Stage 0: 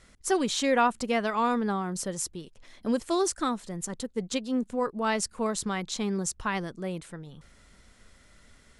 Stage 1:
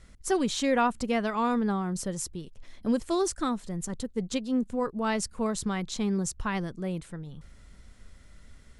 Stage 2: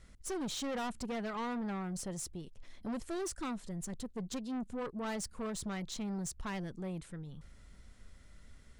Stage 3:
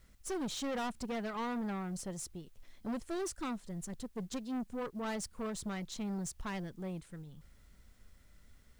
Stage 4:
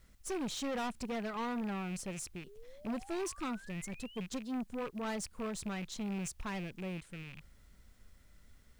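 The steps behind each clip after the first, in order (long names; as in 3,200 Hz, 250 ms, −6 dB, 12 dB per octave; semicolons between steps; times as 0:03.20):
low-shelf EQ 180 Hz +11 dB; level −2.5 dB
soft clipping −30 dBFS, distortion −8 dB; level −4.5 dB
bit-depth reduction 12 bits, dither triangular; expander for the loud parts 1.5 to 1, over −47 dBFS; level +1 dB
loose part that buzzes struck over −52 dBFS, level −39 dBFS; sound drawn into the spectrogram rise, 0:02.46–0:04.21, 380–3,300 Hz −56 dBFS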